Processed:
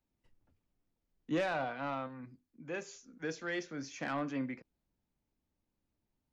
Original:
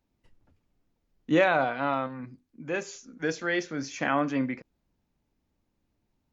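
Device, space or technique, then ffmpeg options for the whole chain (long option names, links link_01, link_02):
one-band saturation: -filter_complex "[0:a]acrossover=split=260|4700[link_01][link_02][link_03];[link_02]asoftclip=type=tanh:threshold=-20dB[link_04];[link_01][link_04][link_03]amix=inputs=3:normalize=0,volume=-8.5dB"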